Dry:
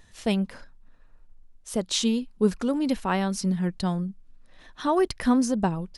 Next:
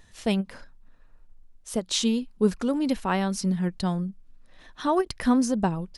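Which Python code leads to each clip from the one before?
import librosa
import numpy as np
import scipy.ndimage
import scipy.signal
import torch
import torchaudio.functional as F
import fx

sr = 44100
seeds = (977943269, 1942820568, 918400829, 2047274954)

y = fx.end_taper(x, sr, db_per_s=440.0)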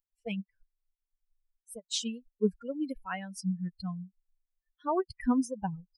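y = fx.bin_expand(x, sr, power=3.0)
y = y * 10.0 ** (-3.0 / 20.0)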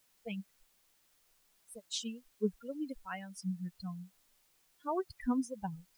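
y = fx.dmg_noise_colour(x, sr, seeds[0], colour='white', level_db=-66.0)
y = y * 10.0 ** (-5.5 / 20.0)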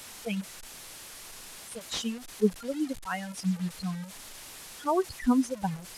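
y = fx.delta_mod(x, sr, bps=64000, step_db=-46.5)
y = y * 10.0 ** (8.5 / 20.0)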